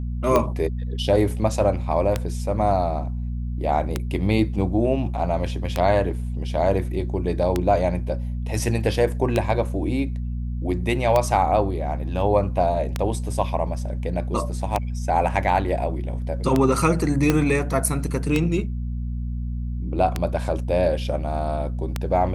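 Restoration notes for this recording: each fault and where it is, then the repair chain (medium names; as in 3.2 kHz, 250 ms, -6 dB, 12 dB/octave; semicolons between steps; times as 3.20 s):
hum 60 Hz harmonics 4 -27 dBFS
tick 33 1/3 rpm -7 dBFS
17.30 s: pop -5 dBFS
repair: de-click; de-hum 60 Hz, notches 4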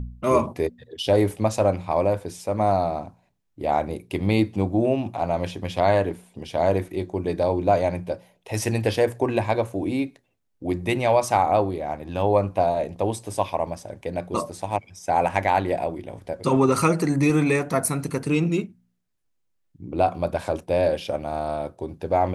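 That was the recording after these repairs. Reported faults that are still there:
17.30 s: pop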